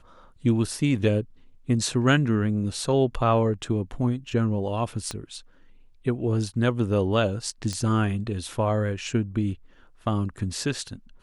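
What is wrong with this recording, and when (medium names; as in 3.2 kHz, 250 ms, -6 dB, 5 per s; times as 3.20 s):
5.11 s: pop -17 dBFS
7.73 s: pop -18 dBFS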